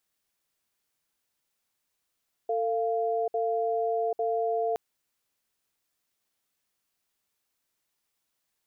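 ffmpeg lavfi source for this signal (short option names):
-f lavfi -i "aevalsrc='0.0422*(sin(2*PI*449*t)+sin(2*PI*693*t))*clip(min(mod(t,0.85),0.79-mod(t,0.85))/0.005,0,1)':d=2.27:s=44100"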